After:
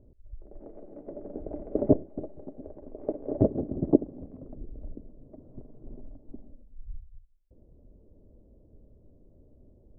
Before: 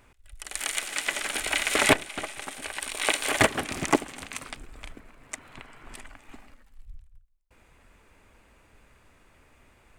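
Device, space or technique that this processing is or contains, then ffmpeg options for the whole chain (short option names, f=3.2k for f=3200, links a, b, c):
under water: -af "lowpass=f=410:w=0.5412,lowpass=f=410:w=1.3066,equalizer=f=600:t=o:w=0.42:g=9.5,volume=4.5dB"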